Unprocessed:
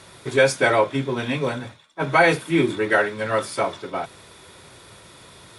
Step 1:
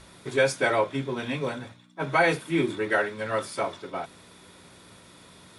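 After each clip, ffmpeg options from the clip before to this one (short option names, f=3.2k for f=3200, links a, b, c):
-af "aeval=exprs='val(0)+0.00631*(sin(2*PI*60*n/s)+sin(2*PI*2*60*n/s)/2+sin(2*PI*3*60*n/s)/3+sin(2*PI*4*60*n/s)/4+sin(2*PI*5*60*n/s)/5)':c=same,bandreject=f=60:t=h:w=6,bandreject=f=120:t=h:w=6,volume=-5.5dB"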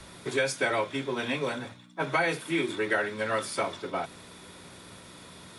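-filter_complex "[0:a]acrossover=split=140|300|1500[a][b][c][d];[a]acompressor=threshold=-54dB:ratio=4[e];[b]acompressor=threshold=-43dB:ratio=4[f];[c]acompressor=threshold=-32dB:ratio=4[g];[d]acompressor=threshold=-32dB:ratio=4[h];[e][f][g][h]amix=inputs=4:normalize=0,volume=3dB"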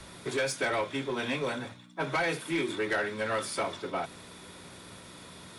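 -af "asoftclip=type=tanh:threshold=-22.5dB"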